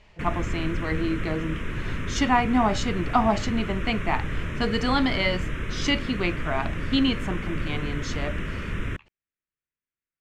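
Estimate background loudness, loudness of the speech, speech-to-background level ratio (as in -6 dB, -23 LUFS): -32.0 LUFS, -27.0 LUFS, 5.0 dB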